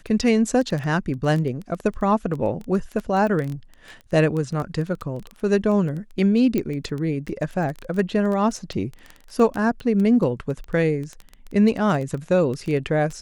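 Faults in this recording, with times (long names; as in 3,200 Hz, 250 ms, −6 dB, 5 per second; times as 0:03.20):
surface crackle 10 per second −25 dBFS
0:06.58: click −11 dBFS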